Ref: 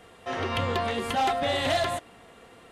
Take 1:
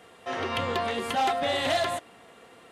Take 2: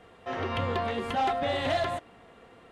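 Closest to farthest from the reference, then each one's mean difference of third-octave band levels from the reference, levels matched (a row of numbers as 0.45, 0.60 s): 1, 2; 1.0, 2.5 dB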